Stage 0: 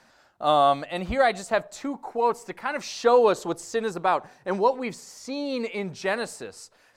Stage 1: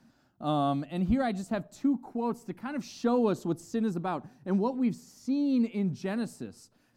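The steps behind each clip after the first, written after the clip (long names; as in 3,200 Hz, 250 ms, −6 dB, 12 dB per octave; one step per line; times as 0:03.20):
octave-band graphic EQ 125/250/500/1,000/2,000/4,000/8,000 Hz +7/+11/−9/−6/−9/−5/−7 dB
level −3 dB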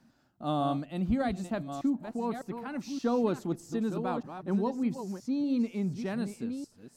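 delay that plays each chunk backwards 604 ms, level −8.5 dB
level −2 dB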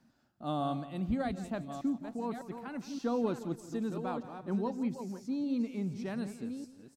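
repeating echo 170 ms, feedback 38%, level −15 dB
level −4 dB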